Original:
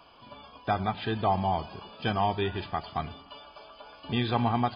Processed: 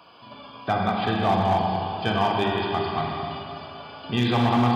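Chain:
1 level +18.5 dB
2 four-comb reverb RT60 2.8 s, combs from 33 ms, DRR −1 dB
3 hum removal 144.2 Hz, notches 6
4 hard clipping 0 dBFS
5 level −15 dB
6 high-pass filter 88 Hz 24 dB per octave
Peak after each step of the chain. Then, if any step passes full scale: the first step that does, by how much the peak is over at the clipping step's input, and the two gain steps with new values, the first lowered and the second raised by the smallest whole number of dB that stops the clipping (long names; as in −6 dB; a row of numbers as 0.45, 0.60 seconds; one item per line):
+5.5, +7.5, +7.5, 0.0, −15.0, −9.0 dBFS
step 1, 7.5 dB
step 1 +10.5 dB, step 5 −7 dB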